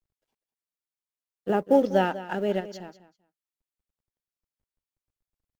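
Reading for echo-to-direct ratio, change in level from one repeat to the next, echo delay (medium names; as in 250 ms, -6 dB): -15.0 dB, -15.0 dB, 196 ms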